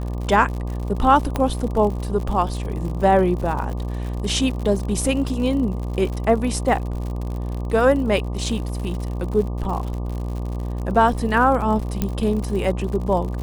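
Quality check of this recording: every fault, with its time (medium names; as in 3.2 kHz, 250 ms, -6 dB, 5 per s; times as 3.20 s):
buzz 60 Hz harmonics 20 -26 dBFS
crackle 83 per s -29 dBFS
1.36 s: pop -9 dBFS
12.02 s: pop -8 dBFS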